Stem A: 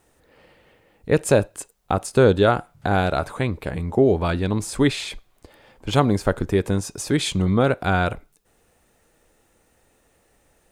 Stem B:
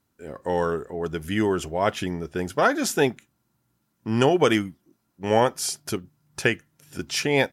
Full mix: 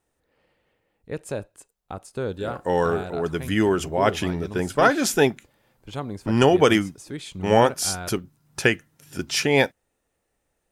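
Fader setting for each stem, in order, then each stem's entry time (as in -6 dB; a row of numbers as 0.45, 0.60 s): -13.5, +2.5 dB; 0.00, 2.20 s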